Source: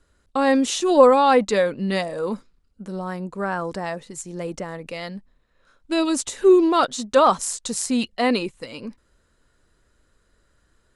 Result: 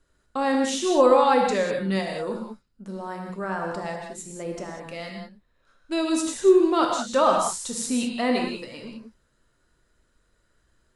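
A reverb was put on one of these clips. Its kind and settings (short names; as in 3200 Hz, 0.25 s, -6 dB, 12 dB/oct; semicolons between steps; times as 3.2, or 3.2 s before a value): non-linear reverb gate 0.22 s flat, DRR 1 dB; gain -5.5 dB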